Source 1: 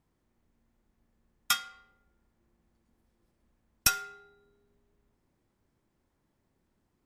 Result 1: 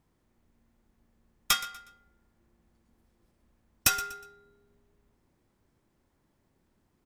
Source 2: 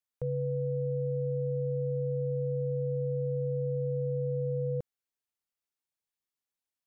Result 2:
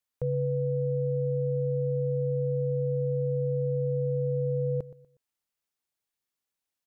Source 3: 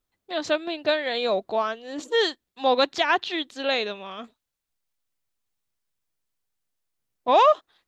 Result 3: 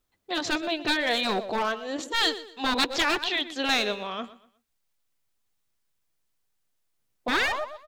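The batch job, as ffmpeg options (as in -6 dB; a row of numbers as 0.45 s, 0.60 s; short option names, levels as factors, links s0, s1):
-af "aeval=exprs='clip(val(0),-1,0.0891)':c=same,aecho=1:1:121|242|363:0.141|0.0438|0.0136,afftfilt=real='re*lt(hypot(re,im),0.355)':imag='im*lt(hypot(re,im),0.355)':win_size=1024:overlap=0.75,volume=1.5"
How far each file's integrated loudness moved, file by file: +1.0 LU, +3.5 LU, -2.5 LU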